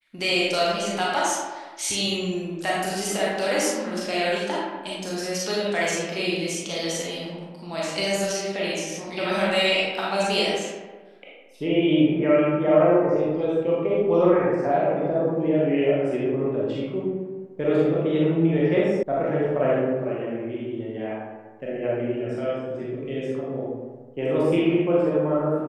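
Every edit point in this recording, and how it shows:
0:19.03: cut off before it has died away

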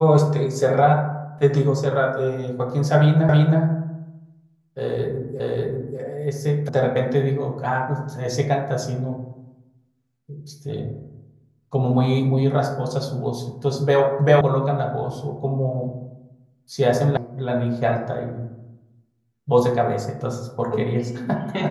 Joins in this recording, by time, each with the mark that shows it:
0:03.29: the same again, the last 0.32 s
0:05.40: the same again, the last 0.59 s
0:06.69: cut off before it has died away
0:14.41: cut off before it has died away
0:17.17: cut off before it has died away

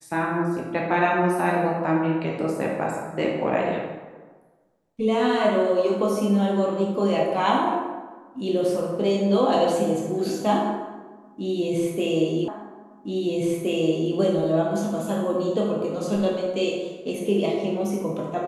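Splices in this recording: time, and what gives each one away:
0:12.48: the same again, the last 1.67 s

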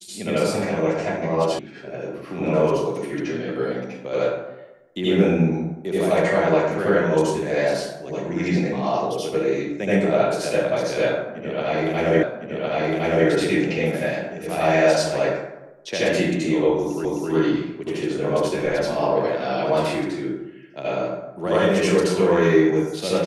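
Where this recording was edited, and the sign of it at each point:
0:01.59: cut off before it has died away
0:12.23: the same again, the last 1.06 s
0:17.05: the same again, the last 0.26 s

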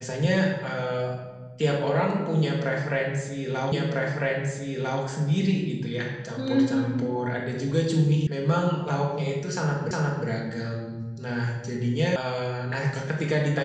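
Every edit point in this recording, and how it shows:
0:03.72: the same again, the last 1.3 s
0:08.27: cut off before it has died away
0:09.91: the same again, the last 0.36 s
0:12.16: cut off before it has died away

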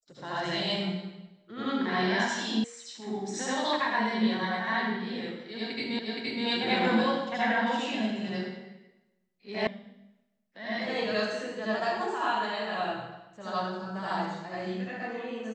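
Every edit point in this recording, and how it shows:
0:02.64: cut off before it has died away
0:05.99: the same again, the last 0.47 s
0:09.67: cut off before it has died away

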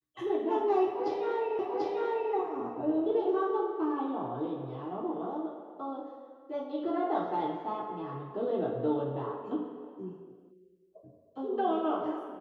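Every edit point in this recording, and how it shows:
0:01.59: the same again, the last 0.74 s

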